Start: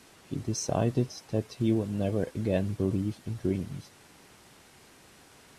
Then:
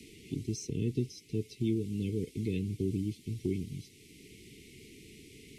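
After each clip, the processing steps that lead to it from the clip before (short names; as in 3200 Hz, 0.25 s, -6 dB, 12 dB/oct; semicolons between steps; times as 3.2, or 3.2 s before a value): Chebyshev band-stop 440–2100 Hz, order 5; three-band squash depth 40%; gain -3 dB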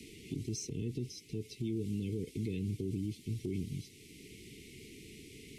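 limiter -29.5 dBFS, peak gain reduction 11 dB; gain +1 dB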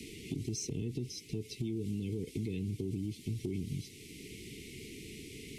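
compressor, threshold -37 dBFS, peak gain reduction 5.5 dB; gain +4.5 dB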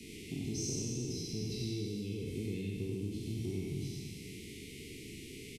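spectral trails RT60 2.34 s; echo 92 ms -3.5 dB; gain -5.5 dB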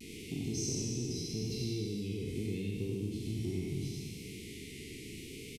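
vibrato 0.78 Hz 38 cents; gain +1.5 dB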